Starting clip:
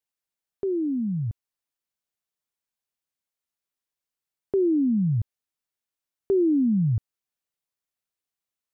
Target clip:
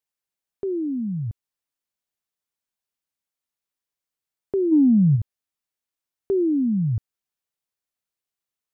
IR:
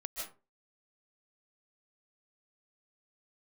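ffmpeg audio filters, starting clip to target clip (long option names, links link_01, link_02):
-filter_complex "[0:a]asplit=3[link_01][link_02][link_03];[link_01]afade=type=out:start_time=4.71:duration=0.02[link_04];[link_02]acontrast=72,afade=type=in:start_time=4.71:duration=0.02,afade=type=out:start_time=5.15:duration=0.02[link_05];[link_03]afade=type=in:start_time=5.15:duration=0.02[link_06];[link_04][link_05][link_06]amix=inputs=3:normalize=0"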